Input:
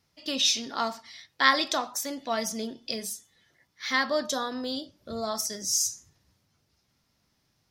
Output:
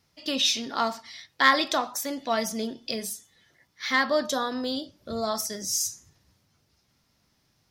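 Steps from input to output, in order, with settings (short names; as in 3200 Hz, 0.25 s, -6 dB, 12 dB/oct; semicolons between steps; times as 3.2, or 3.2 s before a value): dynamic EQ 6100 Hz, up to -5 dB, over -39 dBFS, Q 1; in parallel at -7.5 dB: overloaded stage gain 18 dB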